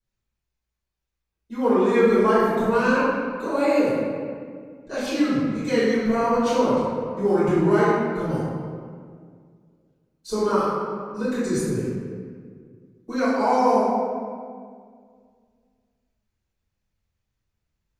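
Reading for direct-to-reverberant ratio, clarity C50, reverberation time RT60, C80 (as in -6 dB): -14.5 dB, -3.5 dB, 2.0 s, -0.5 dB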